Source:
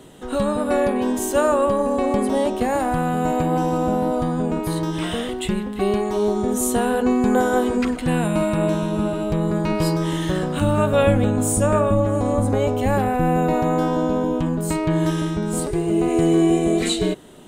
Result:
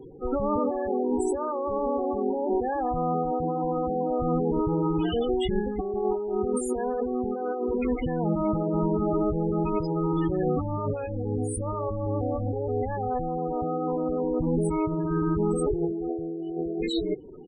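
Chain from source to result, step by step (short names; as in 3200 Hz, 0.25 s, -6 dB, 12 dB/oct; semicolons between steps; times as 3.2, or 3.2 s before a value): comb 2.4 ms, depth 45%; negative-ratio compressor -24 dBFS, ratio -1; loudest bins only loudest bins 16; gain -2.5 dB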